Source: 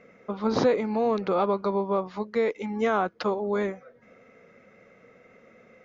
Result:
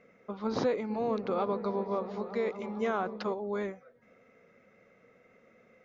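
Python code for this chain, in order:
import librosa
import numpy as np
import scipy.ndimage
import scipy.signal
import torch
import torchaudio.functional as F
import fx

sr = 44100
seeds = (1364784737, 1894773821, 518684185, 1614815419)

y = fx.echo_opening(x, sr, ms=225, hz=200, octaves=1, feedback_pct=70, wet_db=-6, at=(0.89, 3.32), fade=0.02)
y = y * 10.0 ** (-7.0 / 20.0)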